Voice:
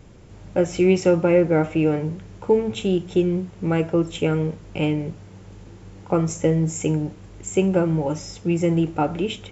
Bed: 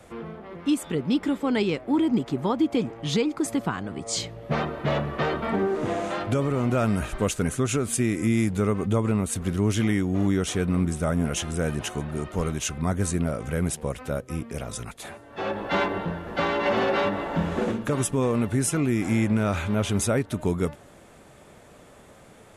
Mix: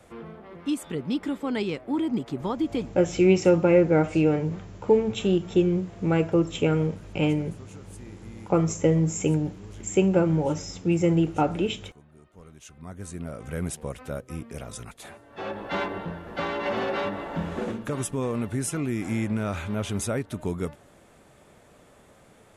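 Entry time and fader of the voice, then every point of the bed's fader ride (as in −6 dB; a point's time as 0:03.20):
2.40 s, −1.5 dB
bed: 0:02.79 −4 dB
0:03.17 −23.5 dB
0:12.35 −23.5 dB
0:13.57 −4.5 dB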